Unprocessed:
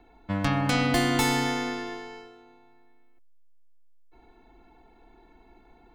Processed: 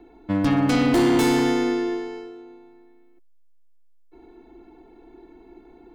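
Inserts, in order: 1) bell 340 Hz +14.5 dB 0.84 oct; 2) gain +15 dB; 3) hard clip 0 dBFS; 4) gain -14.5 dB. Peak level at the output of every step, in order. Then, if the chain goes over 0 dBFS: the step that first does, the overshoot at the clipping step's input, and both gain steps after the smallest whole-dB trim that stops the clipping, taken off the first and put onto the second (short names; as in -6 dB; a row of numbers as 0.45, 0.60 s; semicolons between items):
-5.0, +10.0, 0.0, -14.5 dBFS; step 2, 10.0 dB; step 2 +5 dB, step 4 -4.5 dB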